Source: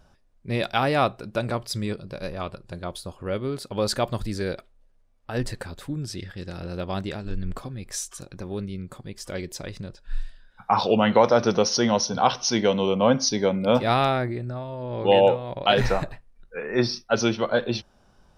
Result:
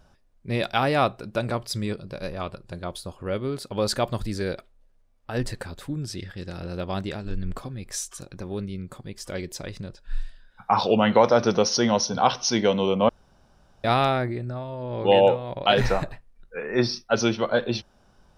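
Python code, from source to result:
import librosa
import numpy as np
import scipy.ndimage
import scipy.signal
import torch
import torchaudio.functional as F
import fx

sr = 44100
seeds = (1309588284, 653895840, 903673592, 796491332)

y = fx.edit(x, sr, fx.room_tone_fill(start_s=13.09, length_s=0.75), tone=tone)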